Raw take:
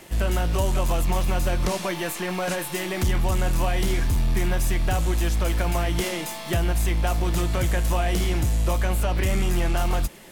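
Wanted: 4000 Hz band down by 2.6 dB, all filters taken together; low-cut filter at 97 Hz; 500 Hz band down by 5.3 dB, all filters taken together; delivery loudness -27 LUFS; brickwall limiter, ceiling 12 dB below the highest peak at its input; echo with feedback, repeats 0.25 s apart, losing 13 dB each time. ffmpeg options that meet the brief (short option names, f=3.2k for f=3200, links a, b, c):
-af "highpass=97,equalizer=f=500:t=o:g=-7.5,equalizer=f=4k:t=o:g=-3.5,alimiter=level_in=0.5dB:limit=-24dB:level=0:latency=1,volume=-0.5dB,aecho=1:1:250|500|750:0.224|0.0493|0.0108,volume=7dB"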